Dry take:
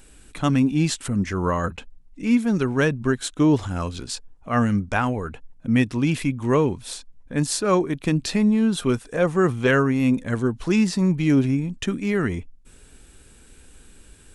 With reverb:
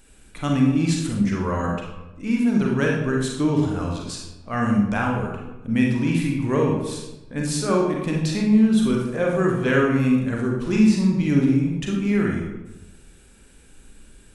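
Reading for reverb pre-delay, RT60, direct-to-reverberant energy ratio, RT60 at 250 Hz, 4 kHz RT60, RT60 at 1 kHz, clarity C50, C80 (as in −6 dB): 33 ms, 1.0 s, −1.5 dB, 1.0 s, 0.65 s, 0.95 s, 2.0 dB, 5.0 dB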